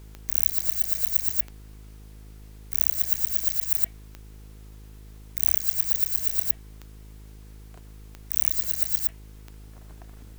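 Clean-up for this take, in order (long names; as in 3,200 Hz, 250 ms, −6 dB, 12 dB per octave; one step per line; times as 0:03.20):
click removal
hum removal 52.5 Hz, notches 9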